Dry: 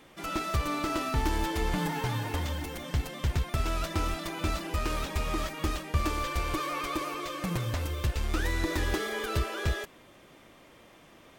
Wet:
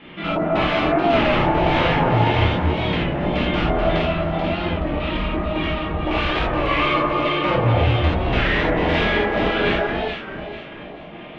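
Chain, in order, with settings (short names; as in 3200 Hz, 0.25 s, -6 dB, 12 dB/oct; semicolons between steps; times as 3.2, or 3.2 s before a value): self-modulated delay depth 0.24 ms; LPF 3800 Hz 24 dB/oct; bell 190 Hz +11 dB 0.52 oct; 3.96–6.07 compressor, threshold -33 dBFS, peak gain reduction 12 dB; wavefolder -28 dBFS; LFO low-pass square 1.8 Hz 750–2900 Hz; echo with dull and thin repeats by turns 0.217 s, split 1800 Hz, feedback 62%, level -2.5 dB; non-linear reverb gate 0.11 s flat, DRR -5.5 dB; record warp 33 1/3 rpm, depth 100 cents; gain +5.5 dB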